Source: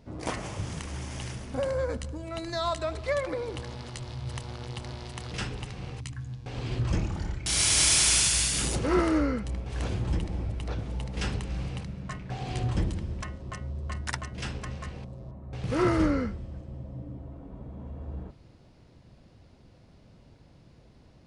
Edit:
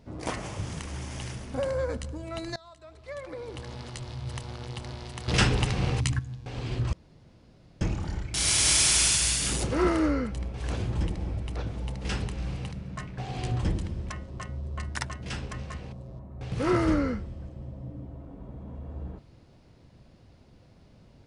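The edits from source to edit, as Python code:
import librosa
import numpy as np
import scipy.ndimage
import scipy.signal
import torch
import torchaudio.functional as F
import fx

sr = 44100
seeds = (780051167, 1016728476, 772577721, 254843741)

y = fx.edit(x, sr, fx.fade_in_from(start_s=2.56, length_s=1.21, curve='qua', floor_db=-23.0),
    fx.clip_gain(start_s=5.28, length_s=0.91, db=11.5),
    fx.insert_room_tone(at_s=6.93, length_s=0.88), tone=tone)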